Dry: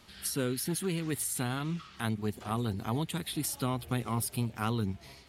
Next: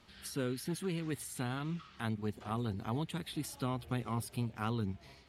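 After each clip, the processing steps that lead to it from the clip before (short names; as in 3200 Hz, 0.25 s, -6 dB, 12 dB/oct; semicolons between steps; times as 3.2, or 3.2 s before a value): high shelf 6800 Hz -11 dB; gain -4 dB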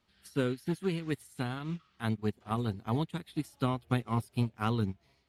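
upward expander 2.5:1, over -46 dBFS; gain +8.5 dB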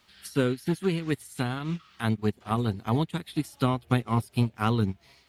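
mismatched tape noise reduction encoder only; gain +5.5 dB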